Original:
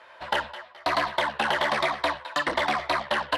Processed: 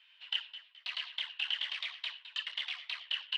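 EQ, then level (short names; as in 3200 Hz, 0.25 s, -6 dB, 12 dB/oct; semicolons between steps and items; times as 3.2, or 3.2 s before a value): ladder band-pass 3100 Hz, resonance 75%; 0.0 dB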